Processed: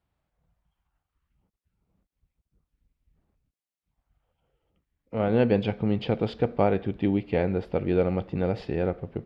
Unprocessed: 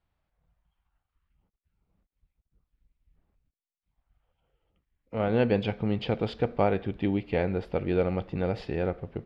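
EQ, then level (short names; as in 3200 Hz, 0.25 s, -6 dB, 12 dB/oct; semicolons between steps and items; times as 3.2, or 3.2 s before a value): HPF 190 Hz 6 dB/oct; tilt -2.5 dB/oct; high shelf 3000 Hz +7 dB; 0.0 dB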